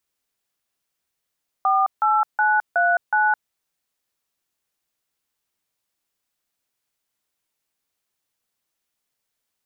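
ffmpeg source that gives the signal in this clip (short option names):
-f lavfi -i "aevalsrc='0.126*clip(min(mod(t,0.369),0.213-mod(t,0.369))/0.002,0,1)*(eq(floor(t/0.369),0)*(sin(2*PI*770*mod(t,0.369))+sin(2*PI*1209*mod(t,0.369)))+eq(floor(t/0.369),1)*(sin(2*PI*852*mod(t,0.369))+sin(2*PI*1336*mod(t,0.369)))+eq(floor(t/0.369),2)*(sin(2*PI*852*mod(t,0.369))+sin(2*PI*1477*mod(t,0.369)))+eq(floor(t/0.369),3)*(sin(2*PI*697*mod(t,0.369))+sin(2*PI*1477*mod(t,0.369)))+eq(floor(t/0.369),4)*(sin(2*PI*852*mod(t,0.369))+sin(2*PI*1477*mod(t,0.369))))':d=1.845:s=44100"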